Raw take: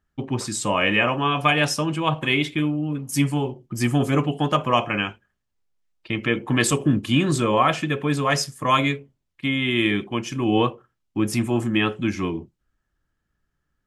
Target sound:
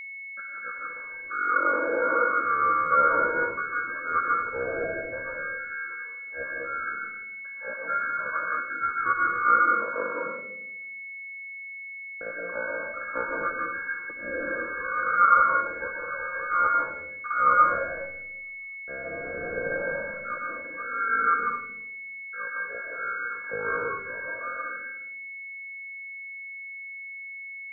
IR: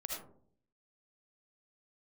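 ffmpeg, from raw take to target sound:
-filter_complex "[0:a]agate=range=0.0501:threshold=0.0112:ratio=16:detection=peak,asplit=3[s0][s1][s2];[s0]bandpass=f=730:t=q:w=8,volume=1[s3];[s1]bandpass=f=1090:t=q:w=8,volume=0.501[s4];[s2]bandpass=f=2440:t=q:w=8,volume=0.355[s5];[s3][s4][s5]amix=inputs=3:normalize=0,lowpass=f=3000:t=q:w=0.5098,lowpass=f=3000:t=q:w=0.6013,lowpass=f=3000:t=q:w=0.9,lowpass=f=3000:t=q:w=2.563,afreqshift=-3500,acrossover=split=180[s6][s7];[s6]acontrast=74[s8];[s8][s7]amix=inputs=2:normalize=0[s9];[1:a]atrim=start_sample=2205[s10];[s9][s10]afir=irnorm=-1:irlink=0,asetrate=22050,aresample=44100,aeval=exprs='val(0)+0.00631*sin(2*PI*2200*n/s)':c=same,volume=2.37"

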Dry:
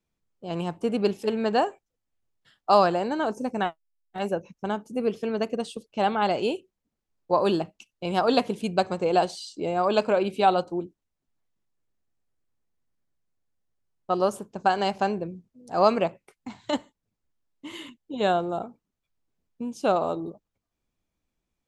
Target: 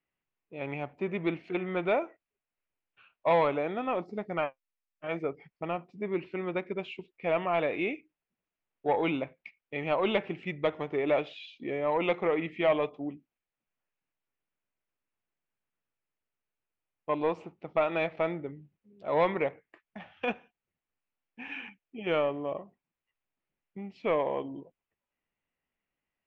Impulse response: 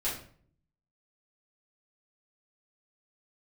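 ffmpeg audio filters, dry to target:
-filter_complex "[0:a]asplit=2[s0][s1];[s1]highpass=f=720:p=1,volume=4.47,asoftclip=type=tanh:threshold=0.501[s2];[s0][s2]amix=inputs=2:normalize=0,lowpass=f=2000:p=1,volume=0.501,asetrate=36382,aresample=44100,lowpass=f=2600:t=q:w=2.6,volume=0.355"

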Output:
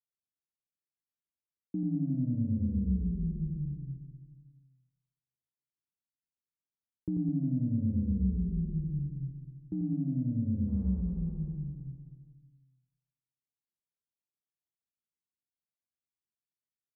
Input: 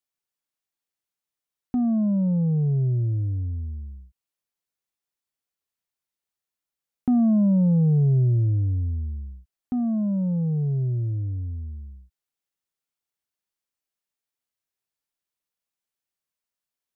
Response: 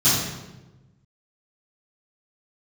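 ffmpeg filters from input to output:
-filter_complex "[0:a]firequalizer=gain_entry='entry(160,0);entry(460,-8);entry(700,-22)':delay=0.05:min_phase=1,acompressor=threshold=0.0562:ratio=6,asplit=2[s0][s1];[1:a]atrim=start_sample=2205[s2];[s1][s2]afir=irnorm=-1:irlink=0,volume=0.00944[s3];[s0][s3]amix=inputs=2:normalize=0,aeval=exprs='val(0)*sin(2*PI*62*n/s)':c=same,asettb=1/sr,asplit=3[s4][s5][s6];[s4]atrim=end=10.684[s7];[s5]atrim=start=10.68:end=11.54,asetpts=PTS-STARTPTS,afade=t=in:d=0.004:c=qsin,afade=t=out:st=0.856:d=0.004:c=qsin,adynamicsmooth=sensitivity=3:basefreq=590[s8];[s6]atrim=start=11.536[s9];[s7][s8]acrossfade=d=0.004:c1=hsin:c2=qsin[s10];[s10][s9]acrossfade=d=0.004:c1=qsin:c2=hsin,highpass=53,aecho=1:1:90|207|359.1|556.8|813.9:0.631|0.398|0.251|0.158|0.1,volume=0.708"

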